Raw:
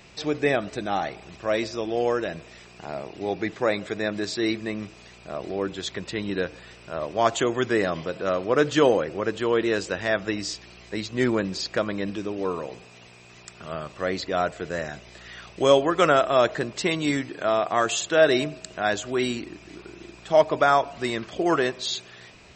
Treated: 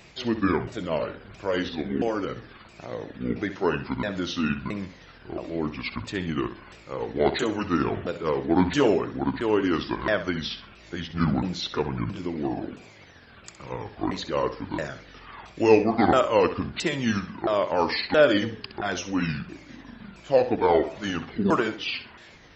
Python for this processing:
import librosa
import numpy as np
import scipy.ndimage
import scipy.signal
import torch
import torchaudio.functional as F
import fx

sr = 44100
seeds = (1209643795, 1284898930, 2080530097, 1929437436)

y = fx.pitch_ramps(x, sr, semitones=-10.5, every_ms=672)
y = fx.room_flutter(y, sr, wall_m=11.2, rt60_s=0.33)